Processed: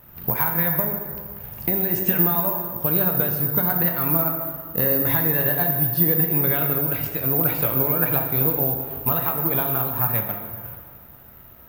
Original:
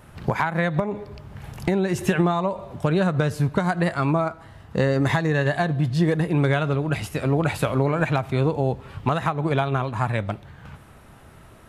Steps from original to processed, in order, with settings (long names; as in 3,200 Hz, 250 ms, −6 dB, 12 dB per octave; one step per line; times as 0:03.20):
dense smooth reverb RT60 1.9 s, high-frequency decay 0.6×, DRR 3 dB
bad sample-rate conversion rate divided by 3×, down filtered, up zero stuff
level −5.5 dB